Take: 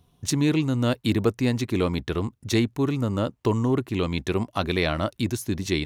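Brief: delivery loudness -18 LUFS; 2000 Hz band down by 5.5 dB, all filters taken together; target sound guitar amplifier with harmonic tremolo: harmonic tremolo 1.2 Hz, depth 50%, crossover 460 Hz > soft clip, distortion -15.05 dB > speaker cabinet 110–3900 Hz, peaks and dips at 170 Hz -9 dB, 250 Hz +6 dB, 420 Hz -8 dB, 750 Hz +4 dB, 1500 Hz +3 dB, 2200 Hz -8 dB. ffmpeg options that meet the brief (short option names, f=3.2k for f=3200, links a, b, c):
-filter_complex "[0:a]equalizer=f=2k:t=o:g=-4.5,acrossover=split=460[a][b];[a]aeval=exprs='val(0)*(1-0.5/2+0.5/2*cos(2*PI*1.2*n/s))':c=same[c];[b]aeval=exprs='val(0)*(1-0.5/2-0.5/2*cos(2*PI*1.2*n/s))':c=same[d];[c][d]amix=inputs=2:normalize=0,asoftclip=threshold=-20.5dB,highpass=110,equalizer=f=170:t=q:w=4:g=-9,equalizer=f=250:t=q:w=4:g=6,equalizer=f=420:t=q:w=4:g=-8,equalizer=f=750:t=q:w=4:g=4,equalizer=f=1.5k:t=q:w=4:g=3,equalizer=f=2.2k:t=q:w=4:g=-8,lowpass=f=3.9k:w=0.5412,lowpass=f=3.9k:w=1.3066,volume=12.5dB"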